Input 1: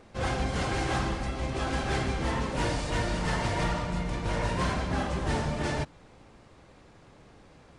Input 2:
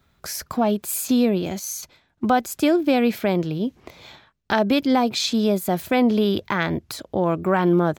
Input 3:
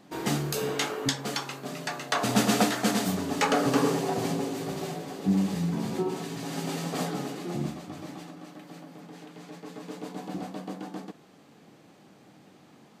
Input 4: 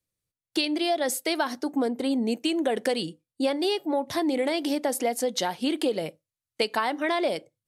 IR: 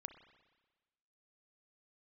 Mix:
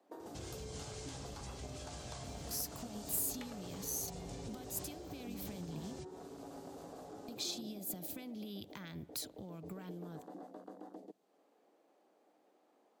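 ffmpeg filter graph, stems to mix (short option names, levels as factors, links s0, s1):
-filter_complex "[0:a]acompressor=threshold=0.0224:ratio=6,lowpass=f=7500:t=q:w=1.8,adelay=200,volume=0.596[s0];[1:a]acompressor=threshold=0.1:ratio=6,adelay=2250,volume=0.355,asplit=3[s1][s2][s3];[s1]atrim=end=6.01,asetpts=PTS-STARTPTS,afade=t=out:st=6.006:d=0.004:c=hsin[s4];[s2]atrim=start=6.01:end=7.28,asetpts=PTS-STARTPTS,volume=0[s5];[s3]atrim=start=7.28,asetpts=PTS-STARTPTS,afade=t=in:d=0.004:c=hsin[s6];[s4][s5][s6]concat=n=3:v=0:a=1,asplit=2[s7][s8];[s8]volume=0.237[s9];[2:a]equalizer=f=590:w=0.61:g=14,acompressor=threshold=0.126:ratio=12,afwtdn=0.0447,volume=0.398,asplit=2[s10][s11];[s11]volume=0.0794[s12];[s10]highpass=f=260:w=0.5412,highpass=f=260:w=1.3066,acompressor=threshold=0.02:ratio=6,volume=1[s13];[s0][s7]amix=inputs=2:normalize=0,highpass=69,acompressor=threshold=0.01:ratio=6,volume=1[s14];[4:a]atrim=start_sample=2205[s15];[s9][s12]amix=inputs=2:normalize=0[s16];[s16][s15]afir=irnorm=-1:irlink=0[s17];[s13][s14][s17]amix=inputs=3:normalize=0,highshelf=f=8800:g=9.5,acrossover=split=200|3000[s18][s19][s20];[s19]acompressor=threshold=0.00224:ratio=4[s21];[s18][s21][s20]amix=inputs=3:normalize=0"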